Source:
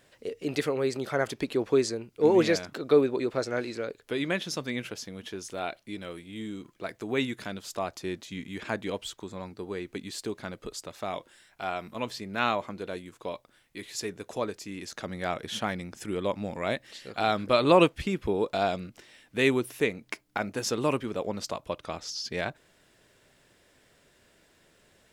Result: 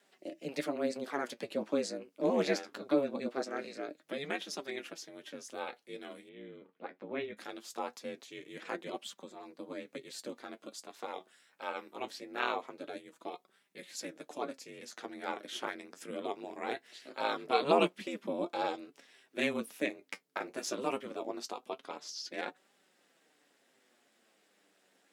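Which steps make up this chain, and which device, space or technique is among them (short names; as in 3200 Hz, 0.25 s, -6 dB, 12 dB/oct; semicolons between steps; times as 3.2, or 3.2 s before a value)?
alien voice (ring modulator 140 Hz; flange 0.22 Hz, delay 4.9 ms, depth 6.2 ms, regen +50%); HPF 210 Hz 24 dB/oct; 6.29–7.37 air absorption 360 m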